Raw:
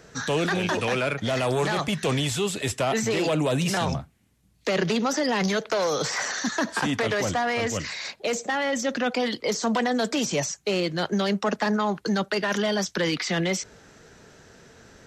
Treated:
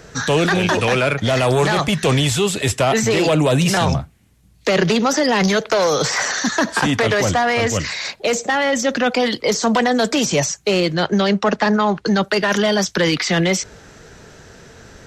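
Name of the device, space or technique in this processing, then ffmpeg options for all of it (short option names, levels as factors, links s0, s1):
low shelf boost with a cut just above: -filter_complex "[0:a]lowshelf=f=100:g=6,equalizer=f=240:t=o:w=0.77:g=-2,asettb=1/sr,asplit=3[s0][s1][s2];[s0]atrim=end=10.944[s3];[s1]atrim=start=10.94:end=12.23,asetpts=PTS-STARTPTS,afade=t=in:d=0.004:c=qsin,afade=t=out:st=1.286:d=0.004:c=qsin,lowpass=5900[s4];[s2]atrim=start=12.226[s5];[s3][s4]acrossfade=d=0.004:c1=hsin:c2=qsin[s6];[s6][s5]acrossfade=d=0.004:c1=qsin:c2=hsin,volume=2.51"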